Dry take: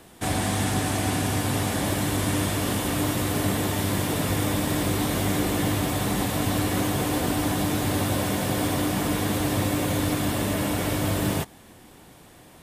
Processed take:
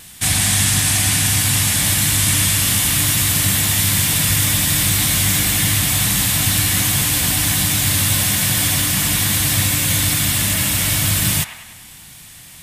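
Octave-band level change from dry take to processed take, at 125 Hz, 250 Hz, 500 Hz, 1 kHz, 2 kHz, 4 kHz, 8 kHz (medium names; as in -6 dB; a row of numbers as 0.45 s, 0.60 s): +7.0 dB, -1.0 dB, -6.5 dB, 0.0 dB, +10.0 dB, +13.5 dB, +17.0 dB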